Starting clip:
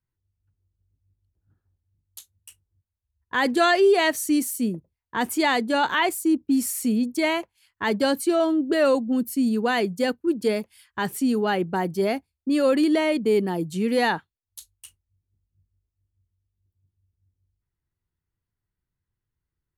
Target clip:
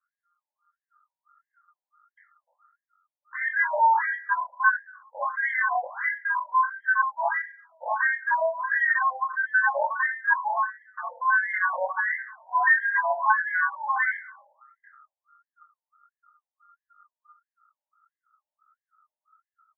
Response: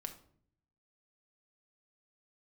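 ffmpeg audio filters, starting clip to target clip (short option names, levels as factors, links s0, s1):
-filter_complex "[0:a]equalizer=f=230:t=o:w=0.23:g=11.5,bandreject=f=50:t=h:w=6,bandreject=f=100:t=h:w=6,bandreject=f=150:t=h:w=6,bandreject=f=200:t=h:w=6,bandreject=f=250:t=h:w=6,bandreject=f=300:t=h:w=6,asubboost=boost=10.5:cutoff=74,acompressor=threshold=0.112:ratio=6,asplit=2[s0][s1];[s1]adelay=199,lowpass=f=950:p=1,volume=0.0841,asplit=2[s2][s3];[s3]adelay=199,lowpass=f=950:p=1,volume=0.33[s4];[s0][s2][s4]amix=inputs=3:normalize=0,aeval=exprs='val(0)*sin(2*PI*1300*n/s)':c=same,asplit=2[s5][s6];[1:a]atrim=start_sample=2205,adelay=23[s7];[s6][s7]afir=irnorm=-1:irlink=0,volume=1.12[s8];[s5][s8]amix=inputs=2:normalize=0,flanger=delay=19.5:depth=2.8:speed=0.11,asuperstop=centerf=2700:order=12:qfactor=1.9,afftfilt=real='re*between(b*sr/1024,680*pow(2300/680,0.5+0.5*sin(2*PI*1.5*pts/sr))/1.41,680*pow(2300/680,0.5+0.5*sin(2*PI*1.5*pts/sr))*1.41)':imag='im*between(b*sr/1024,680*pow(2300/680,0.5+0.5*sin(2*PI*1.5*pts/sr))/1.41,680*pow(2300/680,0.5+0.5*sin(2*PI*1.5*pts/sr))*1.41)':win_size=1024:overlap=0.75,volume=2.51"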